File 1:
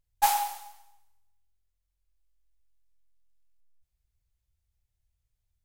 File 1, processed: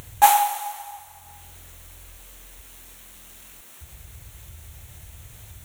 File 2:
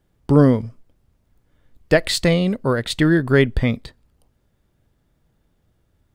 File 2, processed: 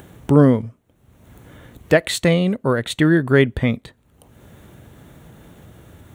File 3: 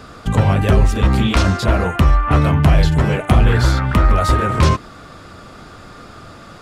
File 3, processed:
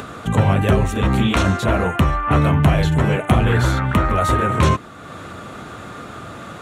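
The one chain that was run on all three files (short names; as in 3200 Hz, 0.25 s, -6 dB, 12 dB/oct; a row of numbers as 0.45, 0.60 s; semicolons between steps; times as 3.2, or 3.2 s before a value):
HPF 85 Hz 12 dB/oct; upward compressor, threshold -26 dBFS; bell 4900 Hz -14 dB 0.27 oct; normalise peaks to -1.5 dBFS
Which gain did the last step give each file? +9.0, +1.0, 0.0 dB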